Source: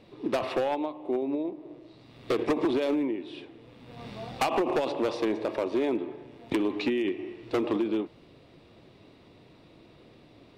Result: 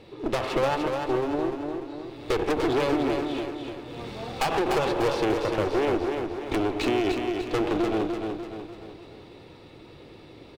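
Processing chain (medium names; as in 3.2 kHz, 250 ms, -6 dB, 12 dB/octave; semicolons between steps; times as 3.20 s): comb 2.3 ms, depth 37%; one-sided clip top -39.5 dBFS, bottom -22 dBFS; feedback delay 296 ms, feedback 48%, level -5 dB; trim +5.5 dB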